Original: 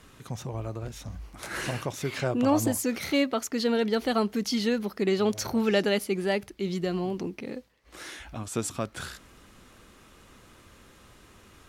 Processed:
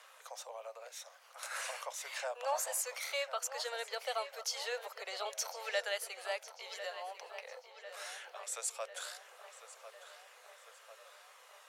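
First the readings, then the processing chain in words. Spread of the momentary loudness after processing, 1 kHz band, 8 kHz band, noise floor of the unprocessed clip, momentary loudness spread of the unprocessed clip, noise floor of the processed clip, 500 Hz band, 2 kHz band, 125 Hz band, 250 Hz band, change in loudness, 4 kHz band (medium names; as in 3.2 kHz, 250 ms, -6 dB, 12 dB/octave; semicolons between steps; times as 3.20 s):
19 LU, -6.5 dB, -2.5 dB, -56 dBFS, 16 LU, -60 dBFS, -13.0 dB, -6.5 dB, under -40 dB, under -40 dB, -11.5 dB, -6.5 dB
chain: steep high-pass 510 Hz 72 dB/octave; dynamic bell 7.9 kHz, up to +6 dB, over -51 dBFS, Q 1.4; in parallel at 0 dB: compression, threshold -44 dBFS, peak gain reduction 20.5 dB; on the sum: phaser 0.21 Hz, delay 1.2 ms, feedback 26%; on a send: filtered feedback delay 1048 ms, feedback 64%, low-pass 4.4 kHz, level -11.5 dB; on the sum: trim -9 dB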